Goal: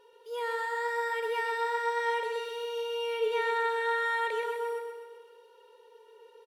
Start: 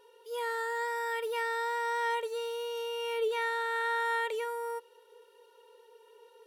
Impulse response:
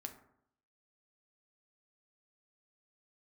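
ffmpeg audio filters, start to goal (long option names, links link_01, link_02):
-filter_complex "[0:a]asplit=2[link_01][link_02];[link_02]adynamicsmooth=sensitivity=3:basefreq=7700,volume=0dB[link_03];[link_01][link_03]amix=inputs=2:normalize=0,aecho=1:1:128|256|384|512|640|768|896:0.501|0.276|0.152|0.0834|0.0459|0.0252|0.0139,volume=-5.5dB"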